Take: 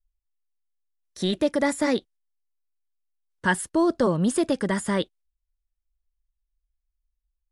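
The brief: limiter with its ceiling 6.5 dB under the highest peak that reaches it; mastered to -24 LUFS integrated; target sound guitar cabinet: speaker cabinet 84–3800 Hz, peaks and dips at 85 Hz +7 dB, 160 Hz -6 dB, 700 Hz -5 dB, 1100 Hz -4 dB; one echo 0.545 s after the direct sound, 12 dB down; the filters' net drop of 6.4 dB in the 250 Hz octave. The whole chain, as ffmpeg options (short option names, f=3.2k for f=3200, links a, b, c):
-af "equalizer=f=250:t=o:g=-8,alimiter=limit=-18dB:level=0:latency=1,highpass=84,equalizer=f=85:t=q:w=4:g=7,equalizer=f=160:t=q:w=4:g=-6,equalizer=f=700:t=q:w=4:g=-5,equalizer=f=1.1k:t=q:w=4:g=-4,lowpass=f=3.8k:w=0.5412,lowpass=f=3.8k:w=1.3066,aecho=1:1:545:0.251,volume=7dB"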